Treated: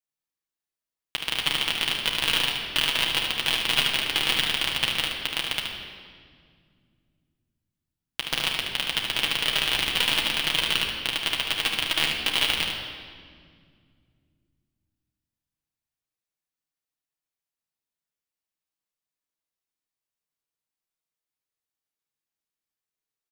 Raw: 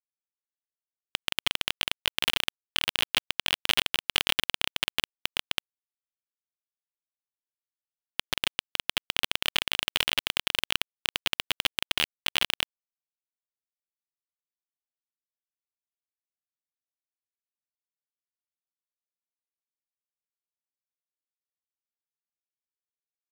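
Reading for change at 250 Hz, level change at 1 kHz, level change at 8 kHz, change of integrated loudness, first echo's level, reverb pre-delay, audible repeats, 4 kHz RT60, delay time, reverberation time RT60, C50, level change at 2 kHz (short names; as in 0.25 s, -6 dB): +6.0 dB, +4.5 dB, +4.0 dB, +4.5 dB, -6.0 dB, 6 ms, 1, 1.6 s, 74 ms, 2.0 s, 1.5 dB, +4.5 dB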